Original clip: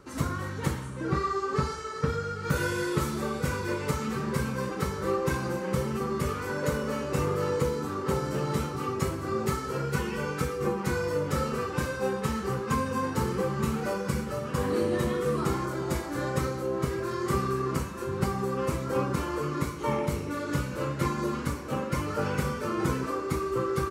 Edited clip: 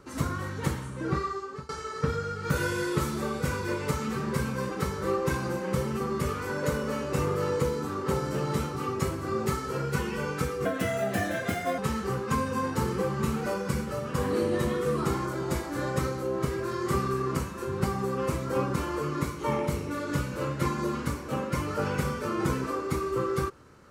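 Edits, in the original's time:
1.09–1.69 s: fade out, to -23.5 dB
10.65–12.18 s: speed 135%

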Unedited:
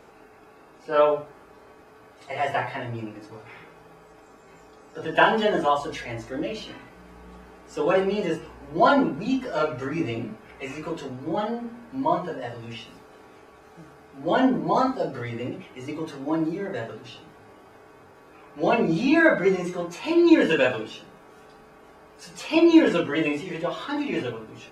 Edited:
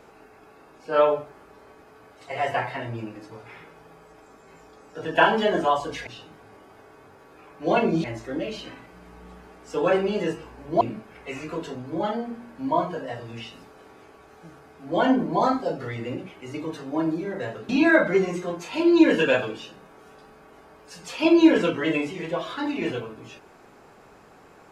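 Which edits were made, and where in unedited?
8.84–10.15 s: delete
17.03–19.00 s: move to 6.07 s

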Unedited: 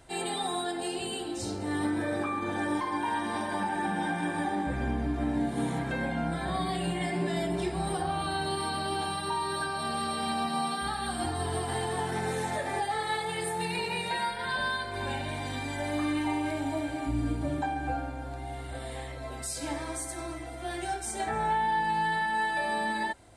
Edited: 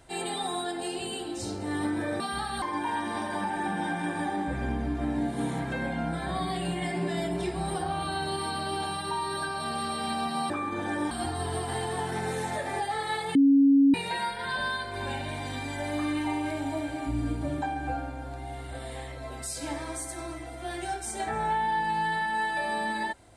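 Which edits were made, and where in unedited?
2.20–2.81 s: swap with 10.69–11.11 s
13.35–13.94 s: bleep 277 Hz -15.5 dBFS

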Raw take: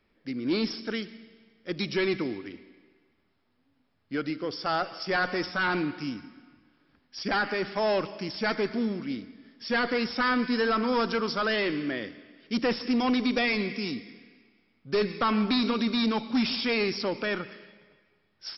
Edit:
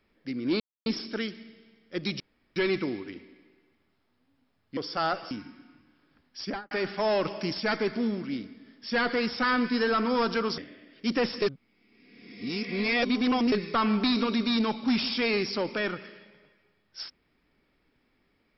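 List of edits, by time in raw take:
0.60 s: insert silence 0.26 s
1.94 s: insert room tone 0.36 s
4.15–4.46 s: delete
5.00–6.09 s: delete
7.18–7.49 s: studio fade out
8.03–8.38 s: gain +3.5 dB
11.36–12.05 s: delete
12.89–14.99 s: reverse

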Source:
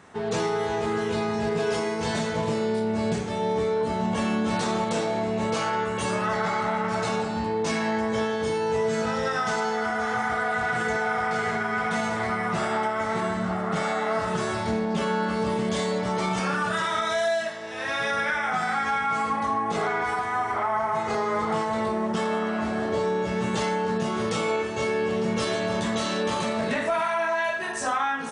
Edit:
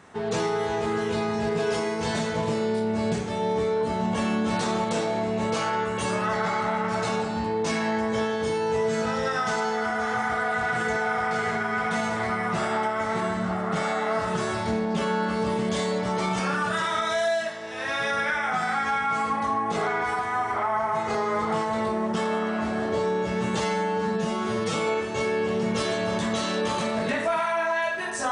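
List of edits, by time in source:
23.60–24.36 s: stretch 1.5×

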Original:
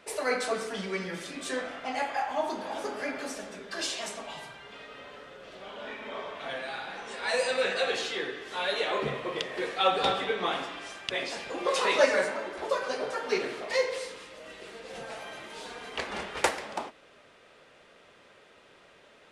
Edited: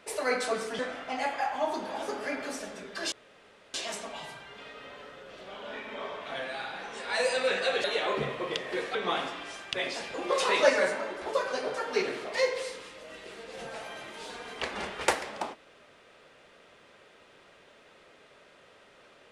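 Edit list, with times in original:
0.79–1.55 s: delete
3.88 s: insert room tone 0.62 s
7.98–8.69 s: delete
9.80–10.31 s: delete

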